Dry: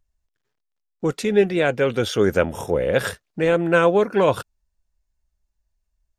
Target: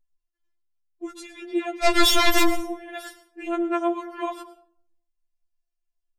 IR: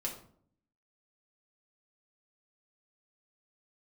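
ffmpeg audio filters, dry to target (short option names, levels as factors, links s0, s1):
-filter_complex "[0:a]asplit=3[s0][s1][s2];[s0]afade=t=out:st=1.83:d=0.02[s3];[s1]aeval=exprs='0.596*sin(PI/2*8.91*val(0)/0.596)':c=same,afade=t=in:st=1.83:d=0.02,afade=t=out:st=2.54:d=0.02[s4];[s2]afade=t=in:st=2.54:d=0.02[s5];[s3][s4][s5]amix=inputs=3:normalize=0,asplit=2[s6][s7];[1:a]atrim=start_sample=2205,adelay=106[s8];[s7][s8]afir=irnorm=-1:irlink=0,volume=0.178[s9];[s6][s9]amix=inputs=2:normalize=0,afftfilt=real='re*4*eq(mod(b,16),0)':imag='im*4*eq(mod(b,16),0)':win_size=2048:overlap=0.75,volume=0.422"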